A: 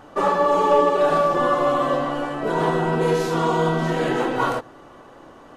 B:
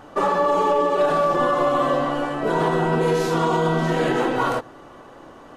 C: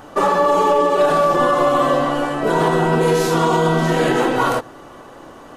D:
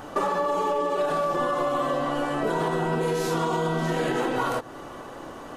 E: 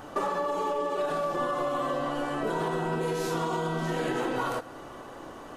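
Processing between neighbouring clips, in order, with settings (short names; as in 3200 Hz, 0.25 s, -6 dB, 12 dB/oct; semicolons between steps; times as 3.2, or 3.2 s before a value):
limiter -12.5 dBFS, peak gain reduction 7 dB; gain +1.5 dB
high shelf 7100 Hz +8.5 dB; gain +4 dB
compressor 4:1, threshold -24 dBFS, peak gain reduction 11 dB
reverb, pre-delay 3 ms, DRR 14.5 dB; gain -4 dB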